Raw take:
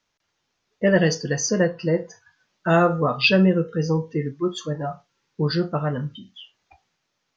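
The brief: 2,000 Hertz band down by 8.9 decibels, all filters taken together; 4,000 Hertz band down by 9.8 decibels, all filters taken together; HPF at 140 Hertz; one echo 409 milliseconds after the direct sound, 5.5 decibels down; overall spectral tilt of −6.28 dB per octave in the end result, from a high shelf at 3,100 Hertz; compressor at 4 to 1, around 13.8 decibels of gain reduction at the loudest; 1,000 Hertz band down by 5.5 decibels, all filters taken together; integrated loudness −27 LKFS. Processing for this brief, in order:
high-pass filter 140 Hz
parametric band 1,000 Hz −5.5 dB
parametric band 2,000 Hz −6 dB
high-shelf EQ 3,100 Hz −7 dB
parametric band 4,000 Hz −5 dB
downward compressor 4 to 1, threshold −32 dBFS
single-tap delay 409 ms −5.5 dB
level +8 dB

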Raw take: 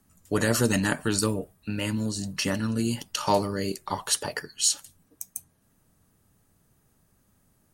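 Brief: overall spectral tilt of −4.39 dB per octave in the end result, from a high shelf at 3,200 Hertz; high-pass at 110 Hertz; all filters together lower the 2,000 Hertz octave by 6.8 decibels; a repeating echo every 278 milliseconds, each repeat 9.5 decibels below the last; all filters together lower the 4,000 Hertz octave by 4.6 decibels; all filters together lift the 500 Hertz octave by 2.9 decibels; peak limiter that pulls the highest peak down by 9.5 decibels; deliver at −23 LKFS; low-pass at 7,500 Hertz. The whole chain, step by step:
high-pass filter 110 Hz
low-pass filter 7,500 Hz
parametric band 500 Hz +4 dB
parametric band 2,000 Hz −9 dB
high-shelf EQ 3,200 Hz +4 dB
parametric band 4,000 Hz −6.5 dB
brickwall limiter −19 dBFS
repeating echo 278 ms, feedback 33%, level −9.5 dB
level +7.5 dB

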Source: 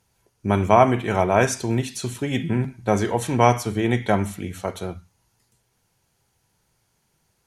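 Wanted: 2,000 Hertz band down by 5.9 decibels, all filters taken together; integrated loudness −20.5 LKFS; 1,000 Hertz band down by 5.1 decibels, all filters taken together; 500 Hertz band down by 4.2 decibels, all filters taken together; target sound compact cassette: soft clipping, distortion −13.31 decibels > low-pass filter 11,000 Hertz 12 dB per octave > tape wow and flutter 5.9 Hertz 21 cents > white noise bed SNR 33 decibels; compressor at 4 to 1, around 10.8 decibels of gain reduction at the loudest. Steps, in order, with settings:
parametric band 500 Hz −4 dB
parametric band 1,000 Hz −4 dB
parametric band 2,000 Hz −6 dB
downward compressor 4 to 1, threshold −26 dBFS
soft clipping −23.5 dBFS
low-pass filter 11,000 Hz 12 dB per octave
tape wow and flutter 5.9 Hz 21 cents
white noise bed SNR 33 dB
level +13 dB

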